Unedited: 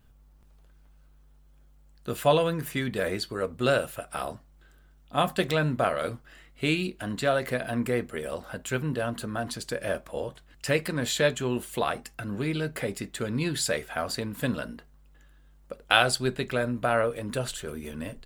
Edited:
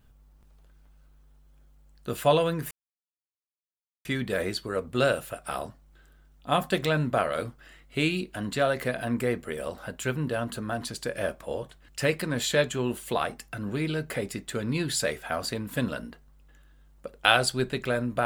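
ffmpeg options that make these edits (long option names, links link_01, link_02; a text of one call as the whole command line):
ffmpeg -i in.wav -filter_complex "[0:a]asplit=2[link_01][link_02];[link_01]atrim=end=2.71,asetpts=PTS-STARTPTS,afade=type=out:start_time=2.706:duration=0.004:curve=hsin,apad=pad_dur=1.34[link_03];[link_02]atrim=start=2.71,asetpts=PTS-STARTPTS,afade=type=in:duration=0.004:curve=hsin[link_04];[link_03][link_04]concat=n=2:v=0:a=1" out.wav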